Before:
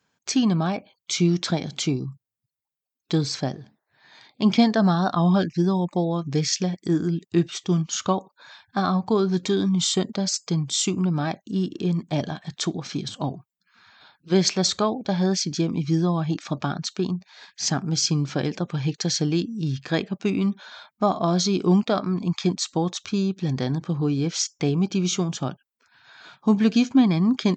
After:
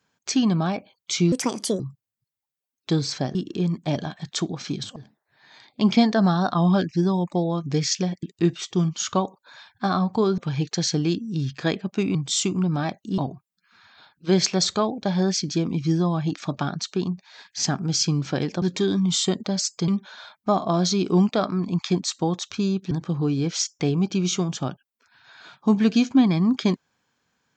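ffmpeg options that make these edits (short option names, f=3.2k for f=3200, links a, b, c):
-filter_complex "[0:a]asplit=12[a][b][c][d][e][f][g][h][i][j][k][l];[a]atrim=end=1.324[m];[b]atrim=start=1.32:end=2.02,asetpts=PTS-STARTPTS,asetrate=64386,aresample=44100[n];[c]atrim=start=2.016:end=3.572[o];[d]atrim=start=11.598:end=13.212[p];[e]atrim=start=3.568:end=6.842[q];[f]atrim=start=7.158:end=9.312[r];[g]atrim=start=18.648:end=20.422[s];[h]atrim=start=10.568:end=11.602[t];[i]atrim=start=13.208:end=18.652[u];[j]atrim=start=9.308:end=10.572[v];[k]atrim=start=20.418:end=23.452[w];[l]atrim=start=23.708[x];[m][n]acrossfade=d=0.004:c1=hsin:c2=hsin[y];[y][o]acrossfade=d=0.004:c1=hsin:c2=hsin[z];[z][p]acrossfade=d=0.004:c1=hsin:c2=hsin[aa];[aa][q]acrossfade=d=0.004:c1=hsin:c2=hsin[ab];[ab][r]acrossfade=d=0.004:c1=hsin:c2=hsin[ac];[ac][s]acrossfade=d=0.004:c1=hsin:c2=hsin[ad];[ad][t]acrossfade=d=0.004:c1=hsin:c2=hsin[ae];[ae][u]acrossfade=d=0.004:c1=hsin:c2=hsin[af];[af][v]acrossfade=d=0.004:c1=hsin:c2=hsin[ag];[ag][w]acrossfade=d=0.004:c1=hsin:c2=hsin[ah];[ah][x]acrossfade=d=0.004:c1=hsin:c2=hsin"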